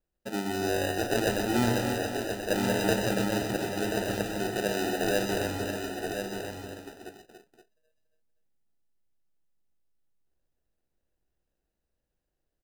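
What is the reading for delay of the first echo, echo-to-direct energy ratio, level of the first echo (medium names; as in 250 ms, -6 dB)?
126 ms, -1.5 dB, -6.5 dB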